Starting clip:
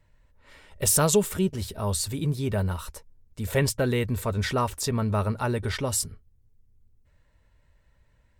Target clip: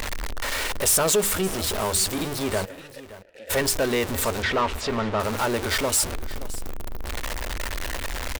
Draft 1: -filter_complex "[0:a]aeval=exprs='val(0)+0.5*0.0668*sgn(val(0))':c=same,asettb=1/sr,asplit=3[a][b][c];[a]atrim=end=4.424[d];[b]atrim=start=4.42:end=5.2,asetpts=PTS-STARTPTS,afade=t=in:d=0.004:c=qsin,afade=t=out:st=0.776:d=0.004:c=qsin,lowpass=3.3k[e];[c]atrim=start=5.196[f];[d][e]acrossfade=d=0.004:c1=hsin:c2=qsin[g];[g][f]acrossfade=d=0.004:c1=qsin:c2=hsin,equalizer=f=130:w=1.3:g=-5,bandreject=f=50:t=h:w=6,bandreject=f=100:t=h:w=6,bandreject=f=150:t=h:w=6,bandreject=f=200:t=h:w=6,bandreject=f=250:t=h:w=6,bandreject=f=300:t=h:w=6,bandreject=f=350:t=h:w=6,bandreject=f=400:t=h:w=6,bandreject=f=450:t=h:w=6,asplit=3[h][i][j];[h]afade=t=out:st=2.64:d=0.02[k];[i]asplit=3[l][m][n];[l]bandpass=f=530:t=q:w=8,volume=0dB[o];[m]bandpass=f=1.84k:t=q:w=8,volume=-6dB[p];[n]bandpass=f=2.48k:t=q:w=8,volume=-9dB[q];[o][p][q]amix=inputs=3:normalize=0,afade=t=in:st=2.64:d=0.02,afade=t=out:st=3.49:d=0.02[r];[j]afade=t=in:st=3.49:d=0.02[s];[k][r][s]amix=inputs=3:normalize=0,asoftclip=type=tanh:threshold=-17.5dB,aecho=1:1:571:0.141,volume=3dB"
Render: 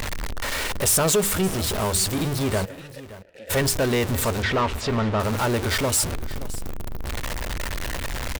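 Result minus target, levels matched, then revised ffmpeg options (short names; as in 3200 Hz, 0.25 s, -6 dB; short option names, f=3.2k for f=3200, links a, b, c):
125 Hz band +6.0 dB
-filter_complex "[0:a]aeval=exprs='val(0)+0.5*0.0668*sgn(val(0))':c=same,asettb=1/sr,asplit=3[a][b][c];[a]atrim=end=4.424[d];[b]atrim=start=4.42:end=5.2,asetpts=PTS-STARTPTS,afade=t=in:d=0.004:c=qsin,afade=t=out:st=0.776:d=0.004:c=qsin,lowpass=3.3k[e];[c]atrim=start=5.196[f];[d][e]acrossfade=d=0.004:c1=hsin:c2=qsin[g];[g][f]acrossfade=d=0.004:c1=qsin:c2=hsin,equalizer=f=130:w=1.3:g=-16,bandreject=f=50:t=h:w=6,bandreject=f=100:t=h:w=6,bandreject=f=150:t=h:w=6,bandreject=f=200:t=h:w=6,bandreject=f=250:t=h:w=6,bandreject=f=300:t=h:w=6,bandreject=f=350:t=h:w=6,bandreject=f=400:t=h:w=6,bandreject=f=450:t=h:w=6,asplit=3[h][i][j];[h]afade=t=out:st=2.64:d=0.02[k];[i]asplit=3[l][m][n];[l]bandpass=f=530:t=q:w=8,volume=0dB[o];[m]bandpass=f=1.84k:t=q:w=8,volume=-6dB[p];[n]bandpass=f=2.48k:t=q:w=8,volume=-9dB[q];[o][p][q]amix=inputs=3:normalize=0,afade=t=in:st=2.64:d=0.02,afade=t=out:st=3.49:d=0.02[r];[j]afade=t=in:st=3.49:d=0.02[s];[k][r][s]amix=inputs=3:normalize=0,asoftclip=type=tanh:threshold=-17.5dB,aecho=1:1:571:0.141,volume=3dB"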